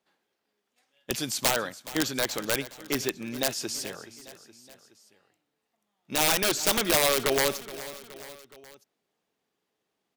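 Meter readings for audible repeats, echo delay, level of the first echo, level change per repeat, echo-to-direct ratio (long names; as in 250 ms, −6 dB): 3, 421 ms, −16.0 dB, −5.0 dB, −14.5 dB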